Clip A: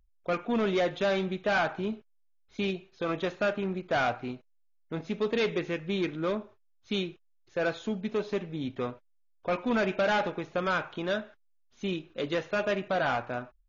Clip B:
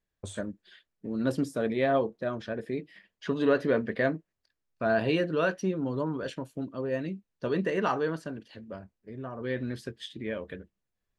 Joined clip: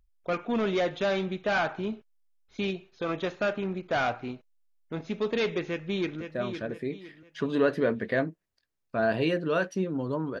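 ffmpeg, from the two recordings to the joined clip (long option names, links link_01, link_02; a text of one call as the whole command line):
ffmpeg -i cue0.wav -i cue1.wav -filter_complex "[0:a]apad=whole_dur=10.4,atrim=end=10.4,atrim=end=6.212[link_01];[1:a]atrim=start=2.078:end=6.27[link_02];[link_01][link_02]acrossfade=duration=0.004:curve1=hsin:curve2=hsin,asplit=2[link_03][link_04];[link_04]afade=type=in:start_time=5.67:duration=0.01,afade=type=out:start_time=6.21:duration=0.01,aecho=0:1:510|1020|1530|2040:0.398107|0.139338|0.0487681|0.0170688[link_05];[link_03][link_05]amix=inputs=2:normalize=0" out.wav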